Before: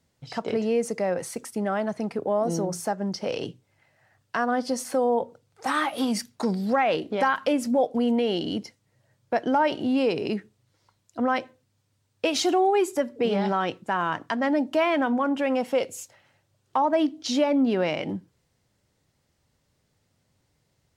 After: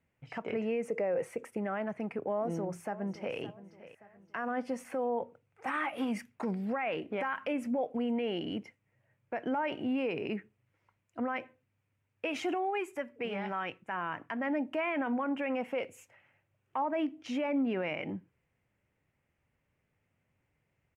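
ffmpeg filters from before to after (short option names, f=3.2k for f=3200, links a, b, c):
-filter_complex "[0:a]asettb=1/sr,asplit=3[a][b][c];[a]atrim=end=0.884[d];[b]atrim=start=0.88:end=1.57,asetpts=PTS-STARTPTS,afade=t=in:d=0.004:c=qsin,afade=t=out:st=0.686:d=0.004:c=qsin,equalizer=f=480:t=o:w=0.77:g=11.5[e];[c]atrim=start=1.566[f];[d][e]acrossfade=d=0.004:c1=hsin:c2=qsin[g];[g][f]acrossfade=d=0.004:c1=qsin:c2=hsin,asplit=2[h][i];[i]afade=t=in:st=2.29:d=0.01,afade=t=out:st=3.37:d=0.01,aecho=0:1:570|1140|1710:0.141254|0.0565015|0.0226006[j];[h][j]amix=inputs=2:normalize=0,asettb=1/sr,asplit=3[k][l][m];[k]atrim=end=12.544[n];[l]atrim=start=12.54:end=13.92,asetpts=PTS-STARTPTS,afade=t=in:d=0.004:c=qsin,afade=t=out:st=1.376:d=0.004:c=qsin,equalizer=f=290:w=0.4:g=-6.5[o];[m]atrim=start=13.916[p];[n][o]acrossfade=d=0.004:c1=hsin:c2=qsin[q];[q][p]acrossfade=d=0.004:c1=qsin:c2=hsin,highshelf=f=3.2k:t=q:w=3:g=-9.5,alimiter=limit=-17dB:level=0:latency=1:release=27,volume=-7.5dB"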